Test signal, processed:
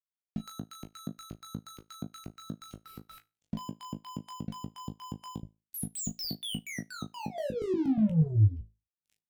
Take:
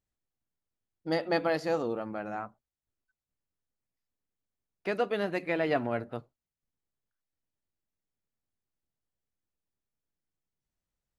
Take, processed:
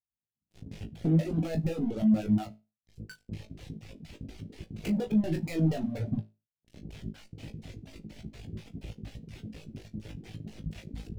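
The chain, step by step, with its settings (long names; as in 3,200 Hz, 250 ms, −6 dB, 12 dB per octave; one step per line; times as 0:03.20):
camcorder AGC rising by 47 dB per second
auto-filter low-pass square 4.2 Hz 220–2,500 Hz
downward compressor 8 to 1, threshold −40 dBFS
high-shelf EQ 4,300 Hz +10 dB
leveller curve on the samples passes 5
high-pass filter 57 Hz 12 dB per octave
leveller curve on the samples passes 3
drawn EQ curve 140 Hz 0 dB, 740 Hz −13 dB, 1,100 Hz −25 dB, 3,500 Hz −15 dB
flutter between parallel walls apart 3.2 metres, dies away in 0.27 s
reverb reduction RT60 1.4 s
level −2 dB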